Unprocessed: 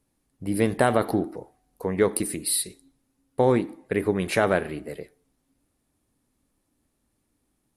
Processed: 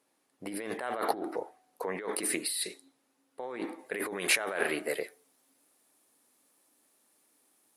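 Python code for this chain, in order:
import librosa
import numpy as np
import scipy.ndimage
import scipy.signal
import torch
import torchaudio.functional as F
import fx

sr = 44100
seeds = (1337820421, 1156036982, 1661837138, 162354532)

y = fx.over_compress(x, sr, threshold_db=-30.0, ratio=-1.0)
y = fx.dynamic_eq(y, sr, hz=1700.0, q=0.86, threshold_db=-46.0, ratio=4.0, max_db=4)
y = scipy.signal.sosfilt(scipy.signal.butter(2, 460.0, 'highpass', fs=sr, output='sos'), y)
y = fx.high_shelf(y, sr, hz=6200.0, db=fx.steps((0.0, -6.5), (3.78, 6.0)))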